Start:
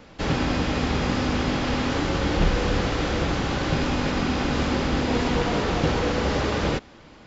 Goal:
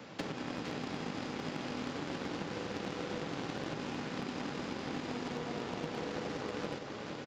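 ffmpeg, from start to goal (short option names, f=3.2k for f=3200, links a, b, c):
-filter_complex "[0:a]highpass=f=110:w=0.5412,highpass=f=110:w=1.3066,acompressor=threshold=-35dB:ratio=16,aecho=1:1:461:0.631,acrossover=split=170|590[a][b][c];[a]acompressor=threshold=-53dB:ratio=4[d];[b]acompressor=threshold=-39dB:ratio=4[e];[c]acompressor=threshold=-44dB:ratio=4[f];[d][e][f]amix=inputs=3:normalize=0,aeval=exprs='0.0316*(cos(1*acos(clip(val(0)/0.0316,-1,1)))-cos(1*PI/2))+0.00501*(cos(3*acos(clip(val(0)/0.0316,-1,1)))-cos(3*PI/2))':c=same,volume=4dB"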